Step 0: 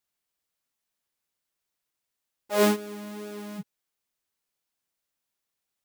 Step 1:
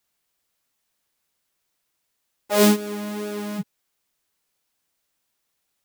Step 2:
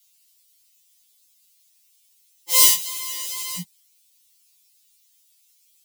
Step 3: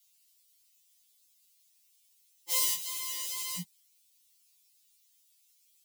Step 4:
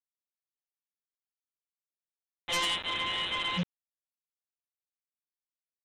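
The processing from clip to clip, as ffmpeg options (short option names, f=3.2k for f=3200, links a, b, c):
-filter_complex "[0:a]acrossover=split=290|3000[a][b][c];[b]acompressor=threshold=-31dB:ratio=2[d];[a][d][c]amix=inputs=3:normalize=0,volume=8.5dB"
-af "aexciter=amount=4.2:drive=9:freq=2.3k,afftfilt=real='re*2.83*eq(mod(b,8),0)':imag='im*2.83*eq(mod(b,8),0)':win_size=2048:overlap=0.75,volume=-4dB"
-af "alimiter=limit=-11dB:level=0:latency=1:release=242,volume=-6.5dB"
-af "aresample=8000,acrusher=bits=7:mix=0:aa=0.000001,aresample=44100,aeval=exprs='0.0531*sin(PI/2*3.16*val(0)/0.0531)':c=same"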